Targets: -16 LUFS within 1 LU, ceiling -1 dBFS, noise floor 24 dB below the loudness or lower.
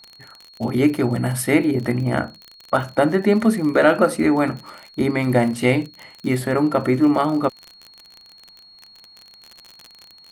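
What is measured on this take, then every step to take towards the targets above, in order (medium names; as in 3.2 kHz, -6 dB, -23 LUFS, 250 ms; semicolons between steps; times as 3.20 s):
tick rate 43 per s; steady tone 4.3 kHz; tone level -45 dBFS; loudness -19.5 LUFS; peak level -2.5 dBFS; loudness target -16.0 LUFS
-> de-click; band-stop 4.3 kHz, Q 30; trim +3.5 dB; peak limiter -1 dBFS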